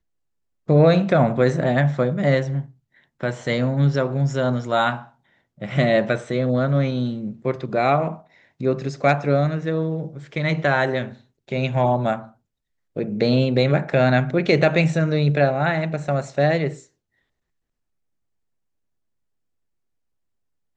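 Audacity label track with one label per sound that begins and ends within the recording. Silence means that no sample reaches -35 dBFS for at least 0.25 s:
0.690000	2.660000	sound
3.210000	5.030000	sound
5.610000	8.190000	sound
8.600000	11.140000	sound
11.490000	12.270000	sound
12.960000	16.790000	sound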